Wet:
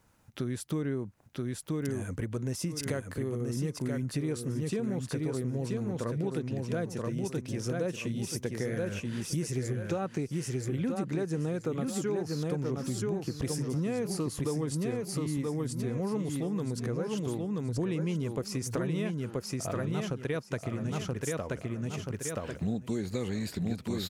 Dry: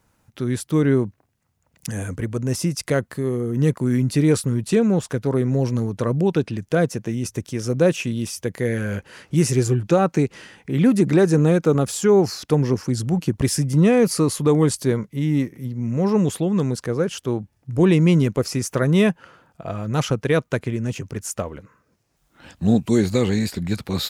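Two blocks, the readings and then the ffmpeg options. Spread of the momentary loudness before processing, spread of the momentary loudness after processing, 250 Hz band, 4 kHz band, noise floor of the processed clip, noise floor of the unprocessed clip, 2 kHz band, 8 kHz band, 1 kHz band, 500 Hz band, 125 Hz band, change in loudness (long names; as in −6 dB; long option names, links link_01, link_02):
11 LU, 3 LU, −12.5 dB, −10.5 dB, −48 dBFS, −67 dBFS, −12.0 dB, −9.5 dB, −12.5 dB, −13.0 dB, −11.5 dB, −12.5 dB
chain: -af "aecho=1:1:979|1958|2937|3916:0.631|0.177|0.0495|0.0139,acompressor=threshold=-28dB:ratio=5,volume=-2.5dB"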